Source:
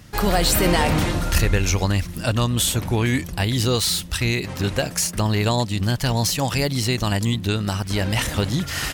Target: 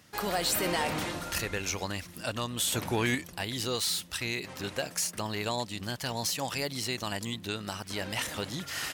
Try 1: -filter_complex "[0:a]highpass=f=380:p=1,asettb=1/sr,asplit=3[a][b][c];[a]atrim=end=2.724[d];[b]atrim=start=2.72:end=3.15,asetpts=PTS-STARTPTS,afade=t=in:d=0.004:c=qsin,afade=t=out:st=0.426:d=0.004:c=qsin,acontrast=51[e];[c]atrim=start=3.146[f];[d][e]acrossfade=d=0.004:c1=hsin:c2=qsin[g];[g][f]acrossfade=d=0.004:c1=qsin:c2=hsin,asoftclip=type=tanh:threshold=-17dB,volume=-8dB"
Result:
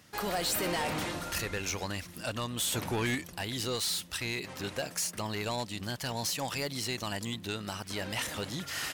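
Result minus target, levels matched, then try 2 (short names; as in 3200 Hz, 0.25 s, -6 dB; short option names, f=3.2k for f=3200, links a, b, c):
soft clip: distortion +14 dB
-filter_complex "[0:a]highpass=f=380:p=1,asettb=1/sr,asplit=3[a][b][c];[a]atrim=end=2.724[d];[b]atrim=start=2.72:end=3.15,asetpts=PTS-STARTPTS,afade=t=in:d=0.004:c=qsin,afade=t=out:st=0.426:d=0.004:c=qsin,acontrast=51[e];[c]atrim=start=3.146[f];[d][e]acrossfade=d=0.004:c1=hsin:c2=qsin[g];[g][f]acrossfade=d=0.004:c1=qsin:c2=hsin,asoftclip=type=tanh:threshold=-7dB,volume=-8dB"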